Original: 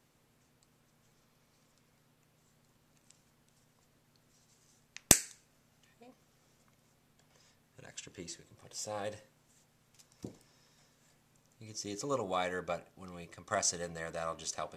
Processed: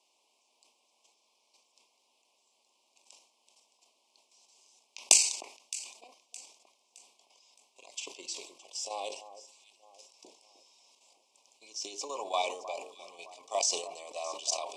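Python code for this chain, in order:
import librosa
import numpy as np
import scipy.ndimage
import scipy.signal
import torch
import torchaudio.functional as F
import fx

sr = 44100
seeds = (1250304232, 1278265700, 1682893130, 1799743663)

p1 = scipy.signal.sosfilt(scipy.signal.ellip(3, 1.0, 60, [1000.0, 2400.0], 'bandstop', fs=sr, output='sos'), x)
p2 = fx.cabinet(p1, sr, low_hz=450.0, low_slope=24, high_hz=9600.0, hz=(490.0, 1200.0, 3000.0, 5100.0), db=(-9, 5, 4, 5))
p3 = fx.level_steps(p2, sr, step_db=9)
p4 = p3 + fx.echo_alternate(p3, sr, ms=308, hz=1600.0, feedback_pct=60, wet_db=-13.0, dry=0)
p5 = fx.sustainer(p4, sr, db_per_s=91.0)
y = p5 * librosa.db_to_amplitude(8.0)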